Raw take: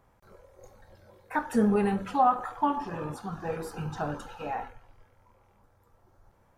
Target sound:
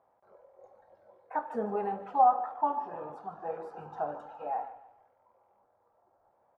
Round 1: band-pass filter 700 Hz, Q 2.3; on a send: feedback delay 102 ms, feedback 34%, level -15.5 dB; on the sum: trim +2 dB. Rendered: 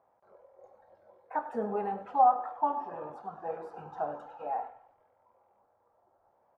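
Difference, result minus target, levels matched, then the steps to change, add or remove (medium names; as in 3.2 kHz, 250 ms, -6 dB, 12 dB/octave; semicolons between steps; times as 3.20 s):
echo 48 ms early
change: feedback delay 150 ms, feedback 34%, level -15.5 dB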